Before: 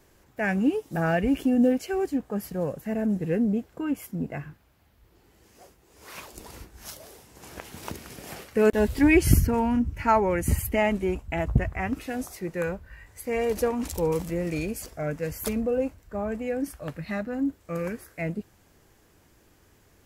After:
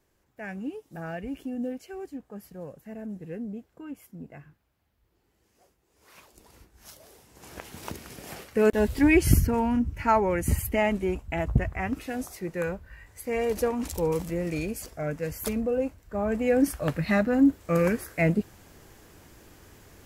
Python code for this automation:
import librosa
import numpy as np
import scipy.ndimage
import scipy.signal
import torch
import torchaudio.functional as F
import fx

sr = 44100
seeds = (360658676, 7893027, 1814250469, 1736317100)

y = fx.gain(x, sr, db=fx.line((6.49, -11.5), (7.56, -1.0), (16.02, -1.0), (16.58, 7.5)))